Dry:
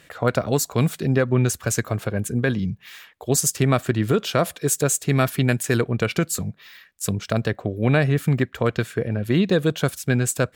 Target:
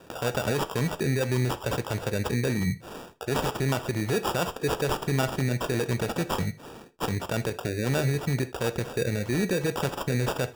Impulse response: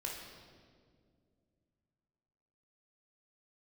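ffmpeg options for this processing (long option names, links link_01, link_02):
-filter_complex "[0:a]alimiter=limit=-18.5dB:level=0:latency=1:release=70,acrusher=samples=21:mix=1:aa=0.000001,lowshelf=frequency=120:gain=-4.5,asplit=2[link_01][link_02];[1:a]atrim=start_sample=2205,atrim=end_sample=3528,asetrate=40131,aresample=44100[link_03];[link_02][link_03]afir=irnorm=-1:irlink=0,volume=-6.5dB[link_04];[link_01][link_04]amix=inputs=2:normalize=0"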